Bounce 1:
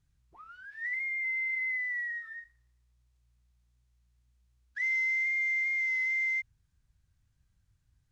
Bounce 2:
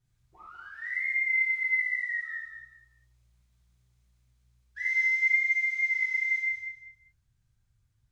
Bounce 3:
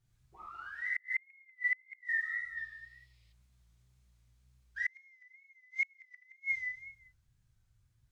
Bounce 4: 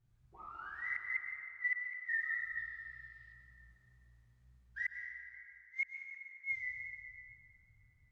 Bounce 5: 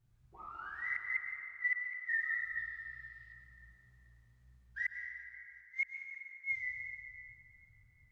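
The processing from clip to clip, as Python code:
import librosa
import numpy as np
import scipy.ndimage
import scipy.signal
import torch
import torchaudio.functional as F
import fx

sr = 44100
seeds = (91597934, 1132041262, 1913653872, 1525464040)

y1 = fx.rider(x, sr, range_db=10, speed_s=2.0)
y1 = fx.echo_feedback(y1, sr, ms=196, feedback_pct=27, wet_db=-7)
y1 = fx.rev_gated(y1, sr, seeds[0], gate_ms=140, shape='flat', drr_db=-7.0)
y1 = y1 * librosa.db_to_amplitude(-7.0)
y2 = fx.wow_flutter(y1, sr, seeds[1], rate_hz=2.1, depth_cents=74.0)
y2 = fx.spec_box(y2, sr, start_s=2.57, length_s=0.76, low_hz=1800.0, high_hz=5500.0, gain_db=11)
y2 = fx.gate_flip(y2, sr, shuts_db=-22.0, range_db=-36)
y3 = fx.high_shelf(y2, sr, hz=2400.0, db=-12.0)
y3 = fx.rev_plate(y3, sr, seeds[2], rt60_s=3.0, hf_ratio=0.5, predelay_ms=100, drr_db=4.0)
y3 = y3 * librosa.db_to_amplitude(1.0)
y4 = fx.echo_feedback(y3, sr, ms=371, feedback_pct=58, wet_db=-22.5)
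y4 = y4 * librosa.db_to_amplitude(1.5)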